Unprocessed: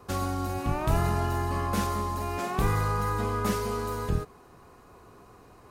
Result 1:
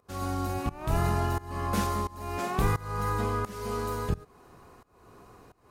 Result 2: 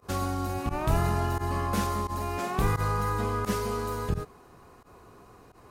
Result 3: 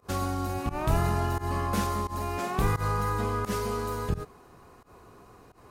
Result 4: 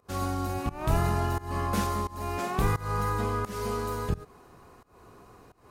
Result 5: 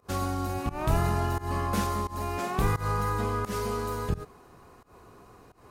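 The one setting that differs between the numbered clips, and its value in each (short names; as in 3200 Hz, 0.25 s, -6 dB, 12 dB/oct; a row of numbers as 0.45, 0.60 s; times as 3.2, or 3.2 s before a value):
pump, release: 441, 67, 111, 274, 163 ms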